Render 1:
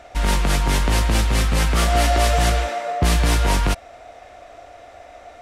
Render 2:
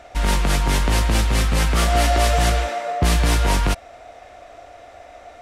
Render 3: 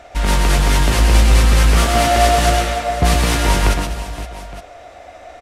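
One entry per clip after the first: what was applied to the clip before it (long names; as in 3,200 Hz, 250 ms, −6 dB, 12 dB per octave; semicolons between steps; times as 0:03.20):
no processing that can be heard
multi-tap delay 111/125/202/289/517/864 ms −8.5/−5.5/−12/−18/−13.5/−17 dB; level +2.5 dB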